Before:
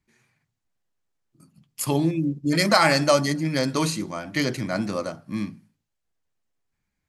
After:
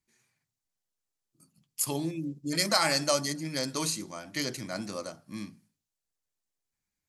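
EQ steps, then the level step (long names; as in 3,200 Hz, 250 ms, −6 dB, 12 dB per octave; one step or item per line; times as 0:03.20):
bass and treble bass −3 dB, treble +14 dB
high-shelf EQ 5,800 Hz −5.5 dB
−9.0 dB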